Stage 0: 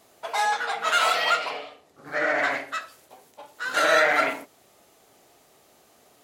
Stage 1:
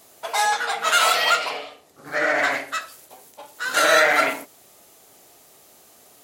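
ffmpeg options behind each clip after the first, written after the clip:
ffmpeg -i in.wav -af "highshelf=frequency=5700:gain=10,volume=2.5dB" out.wav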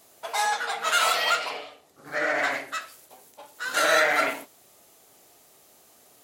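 ffmpeg -i in.wav -af "flanger=delay=2.8:depth=7.9:regen=89:speed=2:shape=triangular" out.wav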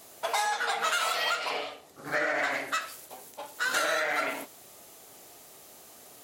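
ffmpeg -i in.wav -af "acompressor=threshold=-30dB:ratio=10,volume=5dB" out.wav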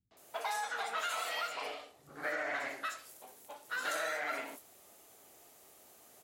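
ffmpeg -i in.wav -filter_complex "[0:a]acrossover=split=150|4600[link_01][link_02][link_03];[link_02]adelay=110[link_04];[link_03]adelay=170[link_05];[link_01][link_04][link_05]amix=inputs=3:normalize=0,volume=-8dB" out.wav

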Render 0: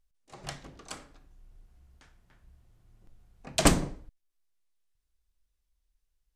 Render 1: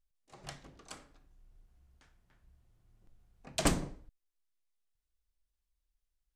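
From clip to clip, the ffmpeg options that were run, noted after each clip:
ffmpeg -i in.wav -af "asoftclip=type=tanh:threshold=-7dB,volume=-6.5dB" out.wav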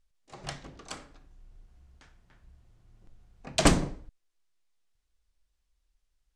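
ffmpeg -i in.wav -af "lowpass=8300,volume=8dB" out.wav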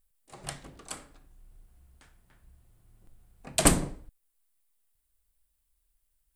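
ffmpeg -i in.wav -af "aexciter=amount=7.8:drive=2.6:freq=8400,volume=-1.5dB" out.wav

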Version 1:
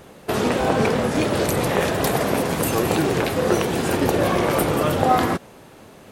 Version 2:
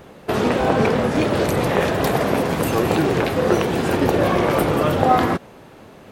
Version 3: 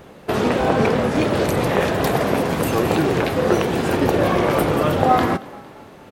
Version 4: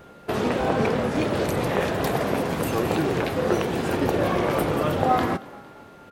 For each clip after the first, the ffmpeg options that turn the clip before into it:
ffmpeg -i in.wav -af "equalizer=frequency=10000:width=0.5:gain=-8,volume=2dB" out.wav
ffmpeg -i in.wav -filter_complex "[0:a]asplit=5[link_01][link_02][link_03][link_04][link_05];[link_02]adelay=228,afreqshift=31,volume=-21dB[link_06];[link_03]adelay=456,afreqshift=62,volume=-26.7dB[link_07];[link_04]adelay=684,afreqshift=93,volume=-32.4dB[link_08];[link_05]adelay=912,afreqshift=124,volume=-38dB[link_09];[link_01][link_06][link_07][link_08][link_09]amix=inputs=5:normalize=0" out.wav
ffmpeg -i in.wav -af "aeval=exprs='val(0)+0.00501*sin(2*PI*1400*n/s)':channel_layout=same,volume=-5dB" out.wav

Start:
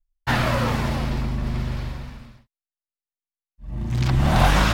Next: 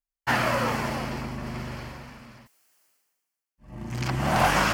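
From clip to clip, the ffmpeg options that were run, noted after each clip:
ffmpeg -i in.wav -af "highpass=frequency=320:poles=1,equalizer=frequency=3700:width_type=o:width=0.25:gain=-11,areverse,acompressor=mode=upward:threshold=-41dB:ratio=2.5,areverse" out.wav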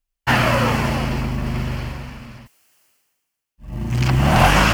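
ffmpeg -i in.wav -af "lowshelf=frequency=150:gain=11,acrusher=bits=8:mode=log:mix=0:aa=0.000001,equalizer=frequency=2800:width_type=o:width=0.45:gain=5,volume=5.5dB" out.wav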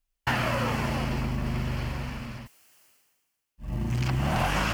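ffmpeg -i in.wav -af "acompressor=threshold=-27dB:ratio=3" out.wav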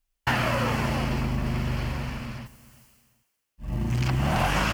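ffmpeg -i in.wav -filter_complex "[0:a]asplit=2[link_01][link_02];[link_02]adelay=381,lowpass=frequency=2000:poles=1,volume=-19dB,asplit=2[link_03][link_04];[link_04]adelay=381,lowpass=frequency=2000:poles=1,volume=0.23[link_05];[link_01][link_03][link_05]amix=inputs=3:normalize=0,volume=2dB" out.wav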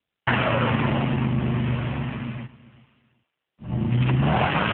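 ffmpeg -i in.wav -af "volume=6dB" -ar 8000 -c:a libopencore_amrnb -b:a 7400 out.amr

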